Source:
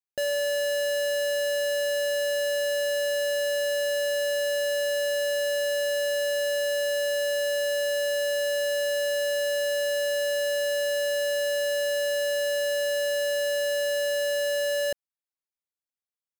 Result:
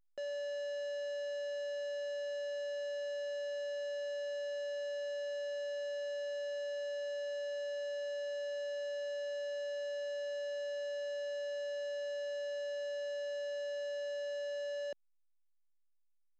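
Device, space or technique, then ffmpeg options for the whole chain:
telephone: -af "highpass=290,lowpass=3500,asoftclip=type=tanh:threshold=-28.5dB,volume=-7.5dB" -ar 16000 -c:a pcm_alaw

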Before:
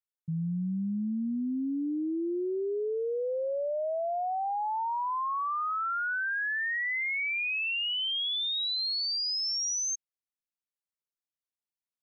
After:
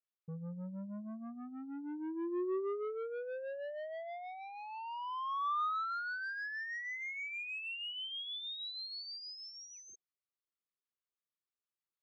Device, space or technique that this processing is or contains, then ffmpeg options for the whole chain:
guitar amplifier with harmonic tremolo: -filter_complex "[0:a]acrossover=split=1000[link_01][link_02];[link_01]aeval=exprs='val(0)*(1-0.7/2+0.7/2*cos(2*PI*6.3*n/s))':channel_layout=same[link_03];[link_02]aeval=exprs='val(0)*(1-0.7/2-0.7/2*cos(2*PI*6.3*n/s))':channel_layout=same[link_04];[link_03][link_04]amix=inputs=2:normalize=0,asoftclip=type=tanh:threshold=-37dB,highpass=100,equalizer=frequency=250:width_type=q:width=4:gain=-5,equalizer=frequency=370:width_type=q:width=4:gain=8,equalizer=frequency=800:width_type=q:width=4:gain=-7,equalizer=frequency=1200:width_type=q:width=4:gain=9,lowpass=frequency=4500:width=0.5412,lowpass=frequency=4500:width=1.3066,volume=-2.5dB"

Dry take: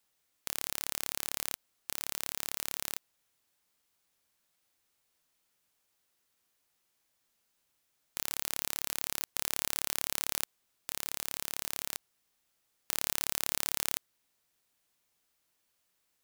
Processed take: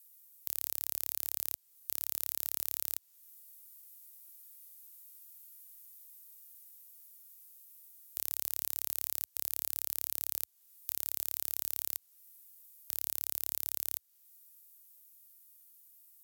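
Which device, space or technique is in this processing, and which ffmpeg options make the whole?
FM broadcast chain: -filter_complex "[0:a]highpass=frequency=62:width=0.5412,highpass=frequency=62:width=1.3066,dynaudnorm=framelen=240:gausssize=21:maxgain=7dB,acrossover=split=680|7300[link_01][link_02][link_03];[link_01]acompressor=threshold=-52dB:ratio=4[link_04];[link_02]acompressor=threshold=-40dB:ratio=4[link_05];[link_03]acompressor=threshold=-48dB:ratio=4[link_06];[link_04][link_05][link_06]amix=inputs=3:normalize=0,aemphasis=mode=production:type=50fm,alimiter=limit=-8.5dB:level=0:latency=1:release=17,asoftclip=type=hard:threshold=-11.5dB,lowpass=frequency=15000:width=0.5412,lowpass=frequency=15000:width=1.3066,aemphasis=mode=production:type=50fm,volume=-7dB"

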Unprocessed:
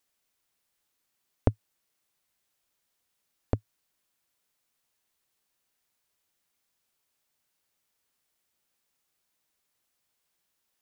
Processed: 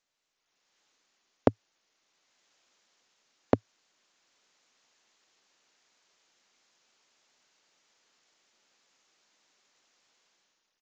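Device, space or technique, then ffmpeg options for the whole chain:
Bluetooth headset: -af "highpass=240,dynaudnorm=framelen=180:gausssize=7:maxgain=14.5dB,aresample=16000,aresample=44100,volume=-2.5dB" -ar 16000 -c:a sbc -b:a 64k

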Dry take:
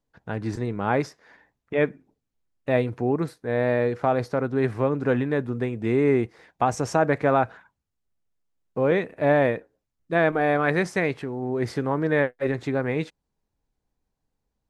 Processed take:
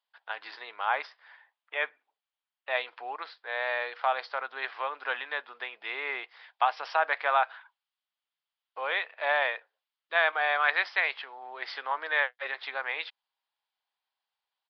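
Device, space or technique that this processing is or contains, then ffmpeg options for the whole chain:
musical greeting card: -filter_complex "[0:a]aresample=11025,aresample=44100,highpass=frequency=830:width=0.5412,highpass=frequency=830:width=1.3066,equalizer=frequency=3200:width_type=o:width=0.46:gain=8.5,asettb=1/sr,asplit=3[link_01][link_02][link_03];[link_01]atrim=end=0.854[link_04];[link_02]atrim=start=0.85:end=2.75,asetpts=PTS-STARTPTS,afade=type=in:duration=0.004:curve=qsin,afade=type=out:start_time=1.896:duration=0.004:curve=qsin,equalizer=frequency=5500:width_type=o:width=2.1:gain=-5.5[link_05];[link_03]atrim=start=2.746[link_06];[link_04][link_05]acrossfade=duration=0.004:curve1=hsin:curve2=qsin[link_07];[link_07][link_06]acrossfade=duration=0.004:curve1=qsin:curve2=hsin,volume=1dB"

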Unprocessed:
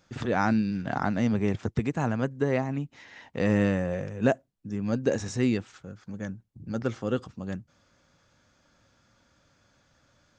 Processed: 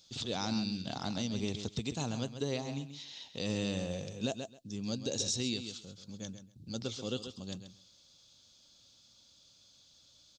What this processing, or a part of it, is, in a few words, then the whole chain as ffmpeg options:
over-bright horn tweeter: -af "highshelf=frequency=2600:width_type=q:width=3:gain=13.5,aecho=1:1:133|266:0.299|0.0448,alimiter=limit=-13.5dB:level=0:latency=1:release=137,volume=-8.5dB"

